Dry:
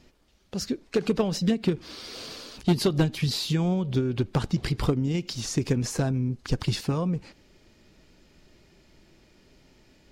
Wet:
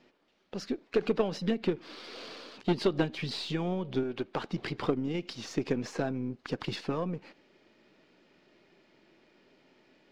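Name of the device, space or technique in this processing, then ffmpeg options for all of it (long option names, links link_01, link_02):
crystal radio: -filter_complex "[0:a]asettb=1/sr,asplit=3[link_01][link_02][link_03];[link_01]atrim=end=4.034[link_04];[link_02]atrim=start=4.03:end=4.51,asetpts=PTS-STARTPTS,afade=type=in:duration=0.004:curve=qsin,afade=type=out:start_time=0.476:duration=0.004:curve=qsin,lowshelf=frequency=200:gain=-11[link_05];[link_03]atrim=start=4.506[link_06];[link_04][link_05]acrossfade=duration=0.004:curve1=hsin:curve2=qsin[link_07];[link_07][link_06]acrossfade=duration=0.004:curve1=qsin:curve2=hsin,highpass=260,lowpass=3300,aeval=exprs='if(lt(val(0),0),0.708*val(0),val(0))':channel_layout=same"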